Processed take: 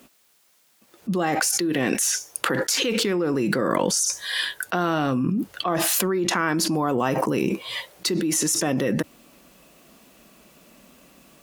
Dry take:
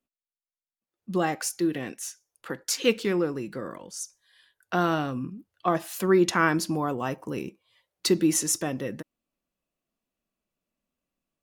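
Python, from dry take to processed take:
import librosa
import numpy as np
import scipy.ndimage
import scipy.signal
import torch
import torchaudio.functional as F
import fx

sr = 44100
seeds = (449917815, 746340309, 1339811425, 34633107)

y = scipy.signal.sosfilt(scipy.signal.butter(2, 58.0, 'highpass', fs=sr, output='sos'), x)
y = fx.peak_eq(y, sr, hz=92.0, db=-13.5, octaves=0.49)
y = fx.env_flatten(y, sr, amount_pct=100)
y = y * 10.0 ** (-5.5 / 20.0)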